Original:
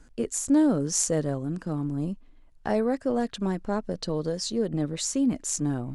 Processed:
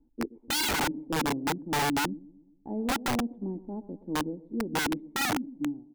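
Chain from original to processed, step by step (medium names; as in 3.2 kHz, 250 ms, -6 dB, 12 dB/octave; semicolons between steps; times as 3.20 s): fade out at the end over 0.65 s; cascade formant filter u; on a send: feedback delay 123 ms, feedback 52%, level -14.5 dB; on the sum: dynamic bell 260 Hz, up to +8 dB, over -40 dBFS, Q 0.77; integer overflow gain 23 dB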